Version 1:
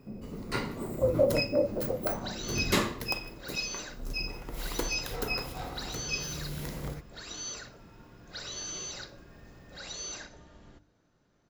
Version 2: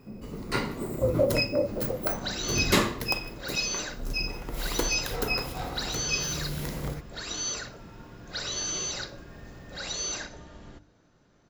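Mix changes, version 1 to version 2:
first sound +4.0 dB; second sound +7.0 dB

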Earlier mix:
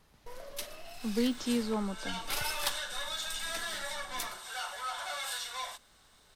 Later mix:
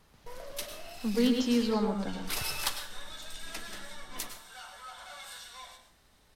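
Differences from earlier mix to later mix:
second sound -11.0 dB; reverb: on, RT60 0.45 s

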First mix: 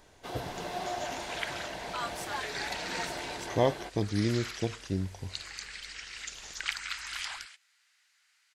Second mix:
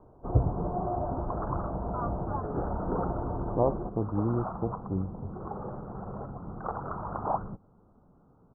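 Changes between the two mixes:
first sound: remove high-pass 700 Hz 6 dB/octave; second sound: remove ladder high-pass 1.3 kHz, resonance 30%; master: add steep low-pass 1.3 kHz 72 dB/octave

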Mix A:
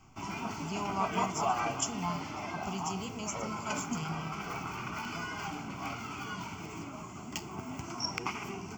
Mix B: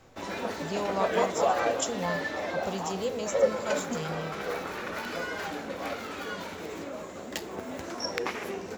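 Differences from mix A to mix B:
background: add peaking EQ 130 Hz -14.5 dB 0.45 oct; master: remove static phaser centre 2.6 kHz, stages 8

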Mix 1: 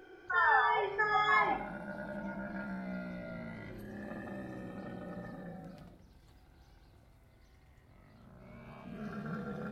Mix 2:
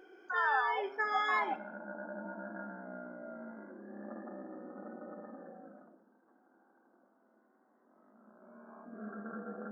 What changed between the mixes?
speech: send -11.5 dB; background: add Chebyshev band-pass 210–1600 Hz, order 5

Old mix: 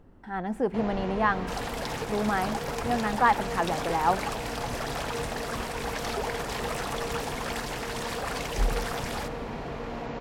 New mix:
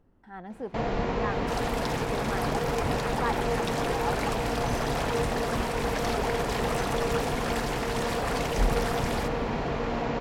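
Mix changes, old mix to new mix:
speech -9.5 dB; first sound +6.0 dB

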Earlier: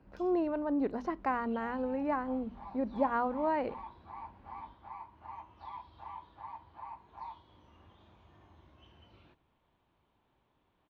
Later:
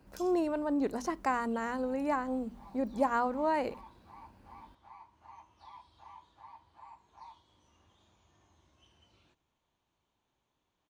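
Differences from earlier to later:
second sound -8.5 dB; master: remove distance through air 320 m

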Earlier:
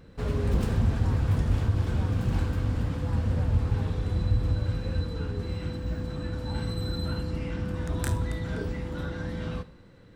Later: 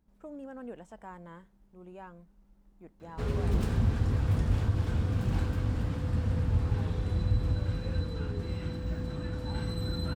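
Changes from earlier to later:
background: entry +3.00 s; reverb: off

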